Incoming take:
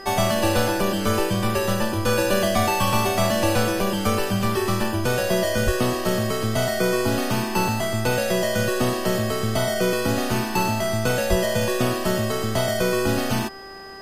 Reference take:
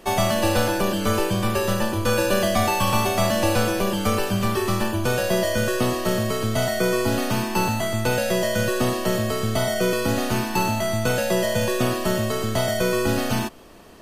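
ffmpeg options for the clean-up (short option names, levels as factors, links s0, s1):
-filter_complex "[0:a]bandreject=f=389.7:t=h:w=4,bandreject=f=779.4:t=h:w=4,bandreject=f=1169.1:t=h:w=4,bandreject=f=1558.8:t=h:w=4,bandreject=f=1948.5:t=h:w=4,bandreject=f=5000:w=30,asplit=3[s0][s1][s2];[s0]afade=t=out:st=5.65:d=0.02[s3];[s1]highpass=f=140:w=0.5412,highpass=f=140:w=1.3066,afade=t=in:st=5.65:d=0.02,afade=t=out:st=5.77:d=0.02[s4];[s2]afade=t=in:st=5.77:d=0.02[s5];[s3][s4][s5]amix=inputs=3:normalize=0,asplit=3[s6][s7][s8];[s6]afade=t=out:st=11.29:d=0.02[s9];[s7]highpass=f=140:w=0.5412,highpass=f=140:w=1.3066,afade=t=in:st=11.29:d=0.02,afade=t=out:st=11.41:d=0.02[s10];[s8]afade=t=in:st=11.41:d=0.02[s11];[s9][s10][s11]amix=inputs=3:normalize=0"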